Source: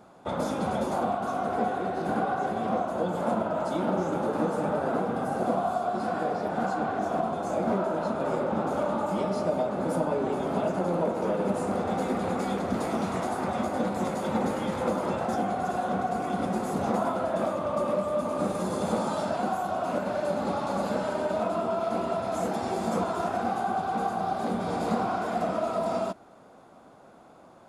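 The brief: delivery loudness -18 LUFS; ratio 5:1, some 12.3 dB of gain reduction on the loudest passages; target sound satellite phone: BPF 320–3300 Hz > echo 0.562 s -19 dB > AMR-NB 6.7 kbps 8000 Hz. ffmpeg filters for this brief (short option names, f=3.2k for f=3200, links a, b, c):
-af "acompressor=threshold=-37dB:ratio=5,highpass=320,lowpass=3.3k,aecho=1:1:562:0.112,volume=24.5dB" -ar 8000 -c:a libopencore_amrnb -b:a 6700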